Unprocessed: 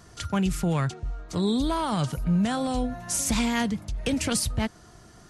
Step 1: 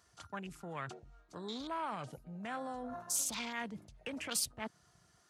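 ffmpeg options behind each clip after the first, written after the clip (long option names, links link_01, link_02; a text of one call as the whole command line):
ffmpeg -i in.wav -af "afwtdn=0.0158,areverse,acompressor=threshold=-33dB:ratio=10,areverse,highpass=frequency=970:poles=1,volume=3.5dB" out.wav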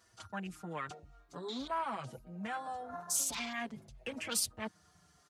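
ffmpeg -i in.wav -filter_complex "[0:a]asplit=2[link_01][link_02];[link_02]adelay=5.7,afreqshift=-0.49[link_03];[link_01][link_03]amix=inputs=2:normalize=1,volume=4.5dB" out.wav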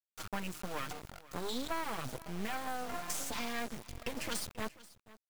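ffmpeg -i in.wav -filter_complex "[0:a]acrossover=split=1700|3700[link_01][link_02][link_03];[link_01]acompressor=threshold=-42dB:ratio=4[link_04];[link_02]acompressor=threshold=-55dB:ratio=4[link_05];[link_03]acompressor=threshold=-47dB:ratio=4[link_06];[link_04][link_05][link_06]amix=inputs=3:normalize=0,acrusher=bits=6:dc=4:mix=0:aa=0.000001,aecho=1:1:485:0.106,volume=9.5dB" out.wav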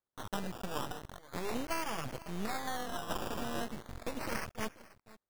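ffmpeg -i in.wav -af "acrusher=samples=16:mix=1:aa=0.000001:lfo=1:lforange=9.6:lforate=0.38,volume=1dB" out.wav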